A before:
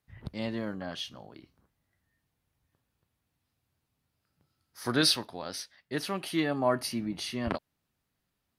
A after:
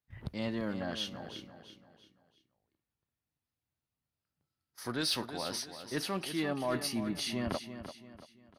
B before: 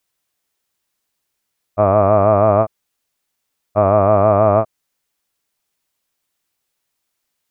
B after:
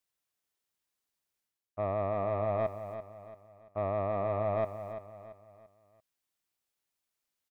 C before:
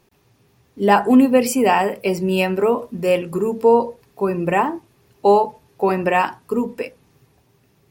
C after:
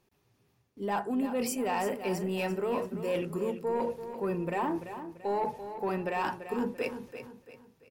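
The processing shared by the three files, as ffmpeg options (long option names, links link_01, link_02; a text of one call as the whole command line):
ffmpeg -i in.wav -af "agate=range=-13dB:threshold=-53dB:ratio=16:detection=peak,areverse,acompressor=threshold=-30dB:ratio=5,areverse,asoftclip=type=tanh:threshold=-23dB,aecho=1:1:339|678|1017|1356:0.299|0.116|0.0454|0.0177,volume=1dB" out.wav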